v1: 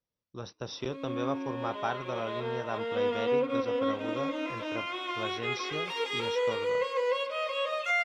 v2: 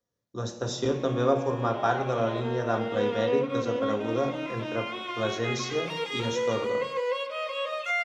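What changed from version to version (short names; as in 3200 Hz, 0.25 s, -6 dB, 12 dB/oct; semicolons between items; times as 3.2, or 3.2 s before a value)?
speech: remove brick-wall FIR low-pass 6000 Hz; reverb: on, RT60 0.85 s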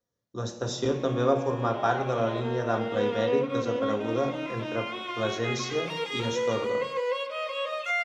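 none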